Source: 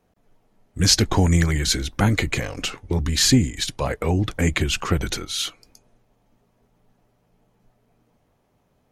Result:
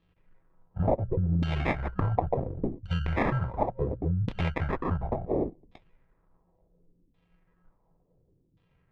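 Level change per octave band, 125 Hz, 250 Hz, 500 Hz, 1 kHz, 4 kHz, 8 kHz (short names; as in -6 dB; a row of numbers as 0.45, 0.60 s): -7.0 dB, -9.0 dB, -2.5 dB, -1.5 dB, -24.5 dB, under -40 dB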